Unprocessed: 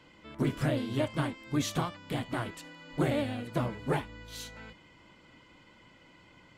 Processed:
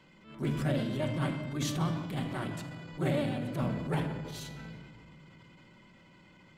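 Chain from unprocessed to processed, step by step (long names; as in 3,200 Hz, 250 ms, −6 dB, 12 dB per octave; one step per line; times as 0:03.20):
parametric band 180 Hz +6.5 dB 0.72 octaves
rectangular room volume 3,900 cubic metres, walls mixed, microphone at 1.1 metres
transient designer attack −9 dB, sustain +4 dB
level −3 dB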